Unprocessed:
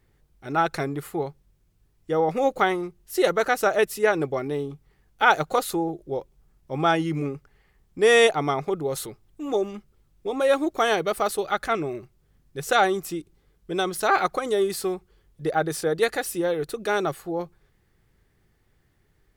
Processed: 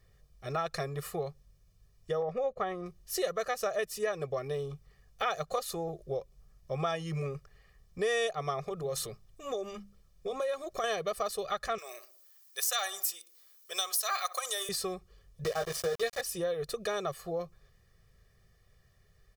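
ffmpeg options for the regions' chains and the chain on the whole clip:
-filter_complex "[0:a]asettb=1/sr,asplit=3[a][b][c];[a]atrim=end=2.224[d];[b]atrim=start=2.22:end=2.86,asetpts=PTS-STARTPTS,afade=t=in:d=0.004:c=qsin,afade=t=out:st=0.636:d=0.004:c=qsin,lowpass=f=1.3k:p=1,agate=range=-11dB:threshold=-37dB:ratio=16:release=100:detection=peak[e];[c]atrim=start=2.856[f];[d][e]acrossfade=d=0.004:c1=hsin:c2=qsin[g];[g][f]acrossfade=d=0.004:c1=qsin:c2=hsin,asettb=1/sr,asplit=3[h][i][j];[h]atrim=end=8.624[k];[i]atrim=start=8.62:end=10.84,asetpts=PTS-STARTPTS,afade=t=in:d=0.004:c=qsin,afade=t=out:st=2.216:d=0.004:c=qsin,acompressor=threshold=-27dB:ratio=2.5:attack=3.2:release=140:knee=1:detection=peak,bandreject=f=50:t=h:w=6,bandreject=f=100:t=h:w=6,bandreject=f=150:t=h:w=6,bandreject=f=200:t=h:w=6[l];[j]atrim=start=10.836[m];[k][l]acrossfade=d=0.004:c1=hsin:c2=qsin[n];[n][m]acrossfade=d=0.004:c1=qsin:c2=hsin,asettb=1/sr,asplit=3[o][p][q];[o]atrim=end=11.784[r];[p]atrim=start=11.78:end=14.69,asetpts=PTS-STARTPTS,afade=t=in:d=0.004:c=qsin,afade=t=out:st=2.906:d=0.004:c=qsin,highpass=770,aemphasis=mode=production:type=riaa,asplit=2[s][t];[t]adelay=63,lowpass=f=1.2k:p=1,volume=-15dB,asplit=2[u][v];[v]adelay=63,lowpass=f=1.2k:p=1,volume=0.53,asplit=2[w][x];[x]adelay=63,lowpass=f=1.2k:p=1,volume=0.53,asplit=2[y][z];[z]adelay=63,lowpass=f=1.2k:p=1,volume=0.53,asplit=2[aa][ab];[ab]adelay=63,lowpass=f=1.2k:p=1,volume=0.53[ac];[s][u][w][y][aa][ac]amix=inputs=6:normalize=0,atrim=end_sample=128331[ad];[q]atrim=start=14.686[ae];[r][ad]acrossfade=d=0.004:c1=hsin:c2=qsin[af];[af][ae]acrossfade=d=0.004:c1=qsin:c2=hsin,asettb=1/sr,asplit=3[ag][ah][ai];[ag]atrim=end=15.444[aj];[ah]atrim=start=15.44:end=16.21,asetpts=PTS-STARTPTS,afade=t=in:d=0.004:c=qsin,afade=t=out:st=0.766:d=0.004:c=qsin,asplit=2[ak][al];[al]adelay=17,volume=-4dB[am];[ak][am]amix=inputs=2:normalize=0,atrim=end_sample=33957,aeval=exprs='val(0)*gte(abs(val(0)),0.0398)':c=same[an];[ai]atrim=start=16.206[ao];[aj][an]acrossfade=d=0.004:c1=hsin:c2=qsin[ap];[ap][ao]acrossfade=d=0.004:c1=qsin:c2=hsin,equalizer=f=5.4k:w=1.9:g=6.5,aecho=1:1:1.7:0.95,acompressor=threshold=-28dB:ratio=3,volume=-4dB"

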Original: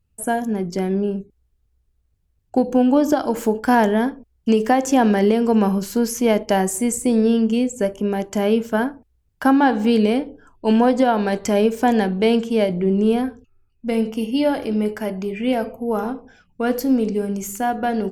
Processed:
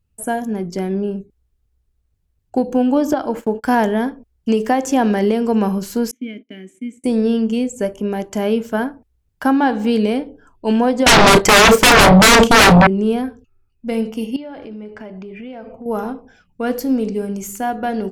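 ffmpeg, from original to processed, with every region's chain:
-filter_complex "[0:a]asettb=1/sr,asplit=3[a][b][c];[a]atrim=end=3.134[d];[b]atrim=start=3.13:end=3.64,asetpts=PTS-STARTPTS,afade=t=in:d=0.004:c=qsin,afade=t=out:st=0.506:d=0.004:c=qsin,agate=range=-28dB:threshold=-30dB:ratio=16:release=100:detection=peak,bass=f=250:g=-1,treble=f=4k:g=-9[e];[c]atrim=start=3.636[f];[d][e]acrossfade=d=0.004:c1=hsin:c2=qsin[g];[g][f]acrossfade=d=0.004:c1=qsin:c2=hsin,asettb=1/sr,asplit=3[h][i][j];[h]atrim=end=6.114[k];[i]atrim=start=6.11:end=7.04,asetpts=PTS-STARTPTS,afade=t=in:d=0.004:c=qsin,afade=t=out:st=0.926:d=0.004:c=qsin,agate=range=-20dB:threshold=-27dB:ratio=16:release=100:detection=peak,asplit=3[l][m][n];[l]bandpass=f=270:t=q:w=8,volume=0dB[o];[m]bandpass=f=2.29k:t=q:w=8,volume=-6dB[p];[n]bandpass=f=3.01k:t=q:w=8,volume=-9dB[q];[o][p][q]amix=inputs=3:normalize=0,equalizer=f=4.8k:t=o:w=0.2:g=-13[r];[j]atrim=start=7.036[s];[k][r]acrossfade=d=0.004:c1=hsin:c2=qsin[t];[t][s]acrossfade=d=0.004:c1=qsin:c2=hsin,asettb=1/sr,asplit=3[u][v][w];[u]atrim=end=11.064[x];[v]atrim=start=11.06:end=12.87,asetpts=PTS-STARTPTS,afade=t=in:d=0.004:c=qsin,afade=t=out:st=1.806:d=0.004:c=qsin,agate=range=-13dB:threshold=-27dB:ratio=16:release=100:detection=peak,aeval=exprs='0.531*sin(PI/2*8.91*val(0)/0.531)':c=same,asplit=2[y][z];[z]adelay=33,volume=-12dB[aa];[y][aa]amix=inputs=2:normalize=0,atrim=end_sample=79821[ab];[w]atrim=start=12.866[ac];[x][ab]acrossfade=d=0.004:c1=hsin:c2=qsin[ad];[ad][ac]acrossfade=d=0.004:c1=qsin:c2=hsin,asettb=1/sr,asplit=3[ae][af][ag];[ae]atrim=end=14.364[ah];[af]atrim=start=14.36:end=15.86,asetpts=PTS-STARTPTS,afade=t=in:d=0.004:c=qsin,afade=t=out:st=1.496:d=0.004:c=qsin,lowpass=3.5k,acompressor=threshold=-30dB:ratio=6:attack=3.2:release=140:knee=1:detection=peak[ai];[ag]atrim=start=15.856[aj];[ah][ai]acrossfade=d=0.004:c1=hsin:c2=qsin[ak];[ak][aj]acrossfade=d=0.004:c1=qsin:c2=hsin"

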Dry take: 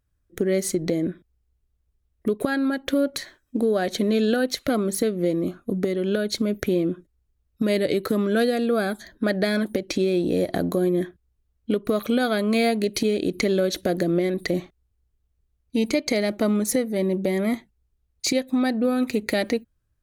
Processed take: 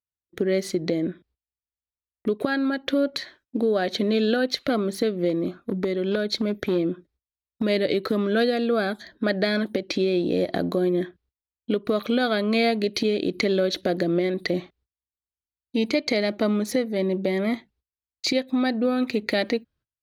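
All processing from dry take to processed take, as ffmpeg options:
-filter_complex "[0:a]asettb=1/sr,asplit=3[a][b][c];[a]atrim=end=5.294[d];[b]atrim=start=5.29:end=7.63,asetpts=PTS-STARTPTS,afade=t=in:d=0.004:c=qsin,afade=t=out:st=2.336:d=0.004:c=qsin,bandreject=f=2.9k:w=13,aeval=exprs='clip(val(0),-1,0.141)':c=same[e];[c]atrim=start=7.626[f];[d][e]acrossfade=d=0.004:c1=hsin:c2=qsin[g];[g][f]acrossfade=d=0.004:c1=qsin:c2=hsin,agate=range=-25dB:threshold=-55dB:ratio=16:detection=peak,highpass=f=140:p=1,highshelf=f=5.9k:t=q:w=1.5:g=-10"

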